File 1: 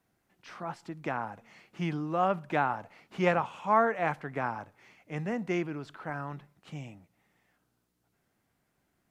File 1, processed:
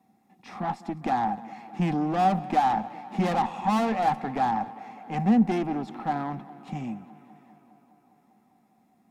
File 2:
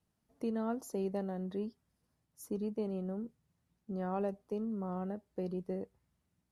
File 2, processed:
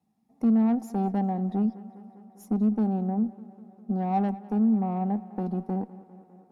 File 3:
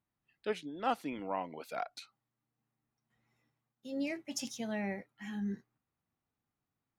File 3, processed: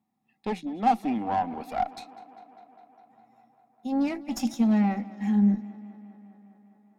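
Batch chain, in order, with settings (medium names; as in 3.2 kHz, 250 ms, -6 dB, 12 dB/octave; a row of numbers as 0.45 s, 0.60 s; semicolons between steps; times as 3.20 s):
in parallel at -9 dB: hard clipper -27.5 dBFS; on the sum: comb of notches 1.5 kHz; valve stage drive 33 dB, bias 0.75; small resonant body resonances 220/770 Hz, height 18 dB, ringing for 50 ms; tape echo 202 ms, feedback 80%, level -18 dB, low-pass 5.1 kHz; normalise loudness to -27 LUFS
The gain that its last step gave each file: +4.0 dB, +1.5 dB, +4.5 dB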